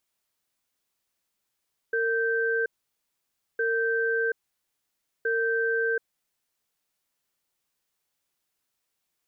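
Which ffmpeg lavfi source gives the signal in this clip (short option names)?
-f lavfi -i "aevalsrc='0.0531*(sin(2*PI*457*t)+sin(2*PI*1560*t))*clip(min(mod(t,1.66),0.73-mod(t,1.66))/0.005,0,1)':d=4.11:s=44100"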